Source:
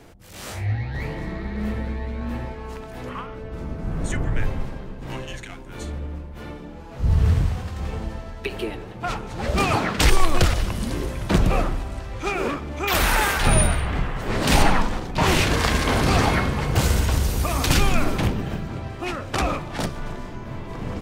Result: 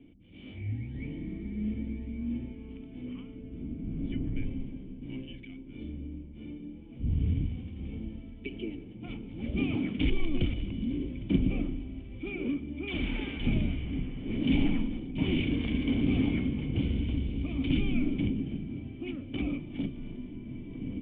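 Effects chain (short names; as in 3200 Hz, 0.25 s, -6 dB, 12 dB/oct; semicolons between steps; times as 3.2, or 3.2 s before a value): vocal tract filter i; gain +2 dB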